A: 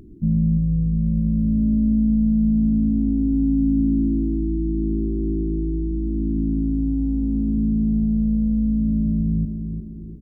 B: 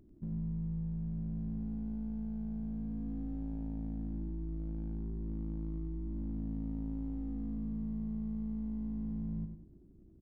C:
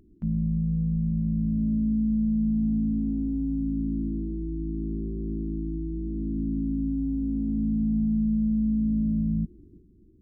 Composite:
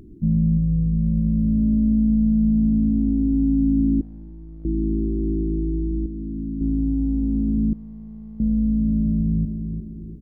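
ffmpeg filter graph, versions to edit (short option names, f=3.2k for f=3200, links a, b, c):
-filter_complex "[1:a]asplit=2[a][b];[0:a]asplit=4[c][d][e][f];[c]atrim=end=4.012[g];[a]atrim=start=4.008:end=4.652[h];[d]atrim=start=4.648:end=6.062[i];[2:a]atrim=start=6.058:end=6.612[j];[e]atrim=start=6.608:end=7.732[k];[b]atrim=start=7.728:end=8.402[l];[f]atrim=start=8.398[m];[g][h]acrossfade=d=0.004:c1=hsin:c2=hsin[n];[n][i]acrossfade=d=0.004:c1=hsin:c2=hsin[o];[o][j]acrossfade=d=0.004:c1=hsin:c2=hsin[p];[p][k]acrossfade=d=0.004:c1=hsin:c2=hsin[q];[q][l]acrossfade=d=0.004:c1=hsin:c2=hsin[r];[r][m]acrossfade=d=0.004:c1=hsin:c2=hsin"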